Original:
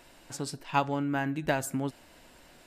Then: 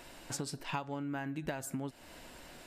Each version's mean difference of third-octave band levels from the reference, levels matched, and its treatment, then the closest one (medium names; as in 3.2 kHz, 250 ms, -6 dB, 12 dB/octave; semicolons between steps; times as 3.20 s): 6.0 dB: compression 10:1, threshold -38 dBFS, peak gain reduction 18 dB; trim +3.5 dB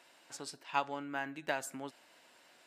4.0 dB: frequency weighting A; trim -5.5 dB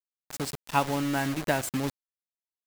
12.0 dB: bit crusher 6-bit; trim +1.5 dB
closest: second